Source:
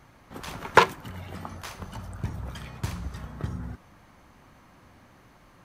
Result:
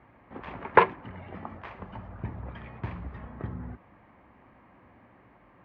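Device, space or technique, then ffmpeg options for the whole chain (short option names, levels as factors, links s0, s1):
bass cabinet: -af "highpass=60,equalizer=f=86:t=q:w=4:g=-6,equalizer=f=150:t=q:w=4:g=-7,equalizer=f=1400:t=q:w=4:g=-6,lowpass=f=2300:w=0.5412,lowpass=f=2300:w=1.3066"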